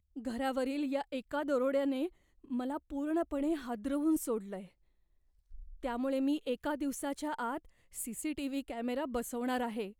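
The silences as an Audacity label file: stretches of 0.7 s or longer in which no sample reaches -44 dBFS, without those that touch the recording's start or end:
4.650000	5.540000	silence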